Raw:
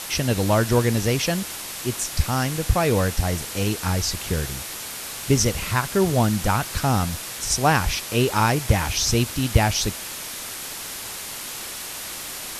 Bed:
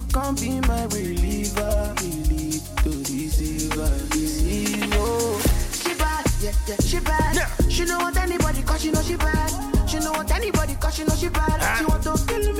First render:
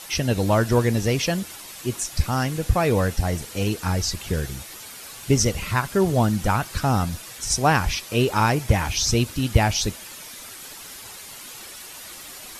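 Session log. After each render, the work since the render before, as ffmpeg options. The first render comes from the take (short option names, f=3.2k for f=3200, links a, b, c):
-af "afftdn=nr=9:nf=-34"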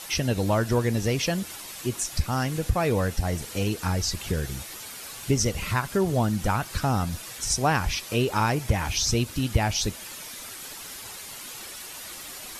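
-af "acompressor=threshold=-26dB:ratio=1.5"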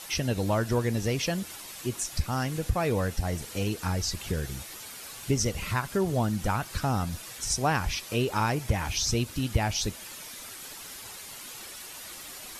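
-af "volume=-3dB"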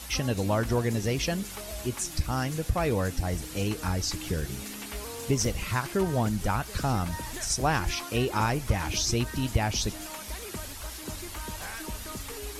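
-filter_complex "[1:a]volume=-18dB[a];[0:a][a]amix=inputs=2:normalize=0"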